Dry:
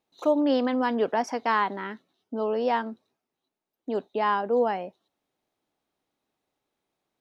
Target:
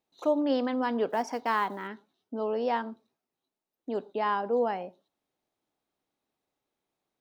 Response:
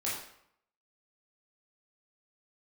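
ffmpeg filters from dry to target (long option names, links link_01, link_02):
-filter_complex "[0:a]asplit=2[link_01][link_02];[link_02]asuperstop=centerf=2200:order=4:qfactor=1.2[link_03];[1:a]atrim=start_sample=2205,atrim=end_sample=6174[link_04];[link_03][link_04]afir=irnorm=-1:irlink=0,volume=-20.5dB[link_05];[link_01][link_05]amix=inputs=2:normalize=0,asettb=1/sr,asplit=3[link_06][link_07][link_08];[link_06]atrim=end=1.104[link_09];[link_07]atrim=start=1.1:end=1.88,asetpts=PTS-STARTPTS,afade=type=in:duration=0.004:curve=qsin,afade=type=out:start_time=0.776:duration=0.004:curve=qsin,acrusher=bits=8:mode=log:mix=0:aa=0.000001[link_10];[link_08]atrim=start=1.876[link_11];[link_09][link_10]acrossfade=duration=0.004:curve1=hsin:curve2=qsin[link_12];[link_12][link_11]acrossfade=duration=0.004:curve1=qsin:curve2=hsin,volume=-4dB"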